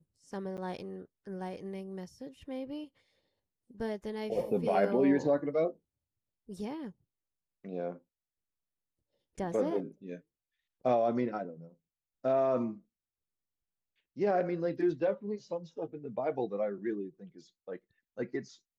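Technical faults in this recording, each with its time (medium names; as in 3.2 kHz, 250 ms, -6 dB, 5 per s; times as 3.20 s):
0.57–0.58 s: dropout 8.6 ms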